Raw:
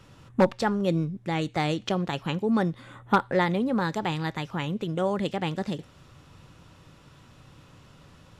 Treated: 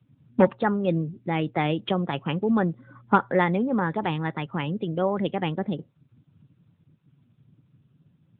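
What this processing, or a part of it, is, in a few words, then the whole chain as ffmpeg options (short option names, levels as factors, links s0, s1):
mobile call with aggressive noise cancelling: -af "highpass=100,afftdn=nr=25:nf=-41,volume=1.33" -ar 8000 -c:a libopencore_amrnb -b:a 10200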